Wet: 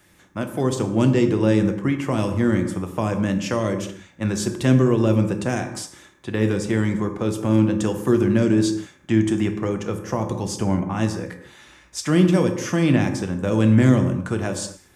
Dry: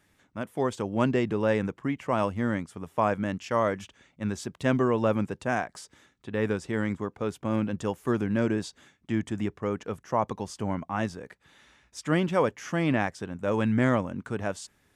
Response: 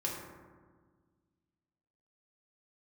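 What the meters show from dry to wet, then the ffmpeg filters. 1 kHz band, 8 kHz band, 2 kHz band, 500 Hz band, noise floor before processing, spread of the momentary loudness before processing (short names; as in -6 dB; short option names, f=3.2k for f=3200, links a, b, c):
0.0 dB, +12.0 dB, +3.0 dB, +5.0 dB, -69 dBFS, 10 LU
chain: -filter_complex "[0:a]acrossover=split=370|3000[a][b][c];[b]acompressor=threshold=-37dB:ratio=6[d];[a][d][c]amix=inputs=3:normalize=0,asplit=2[e][f];[1:a]atrim=start_sample=2205,afade=t=out:st=0.3:d=0.01,atrim=end_sample=13671,highshelf=f=4.7k:g=9[g];[f][g]afir=irnorm=-1:irlink=0,volume=-4dB[h];[e][h]amix=inputs=2:normalize=0,volume=5dB"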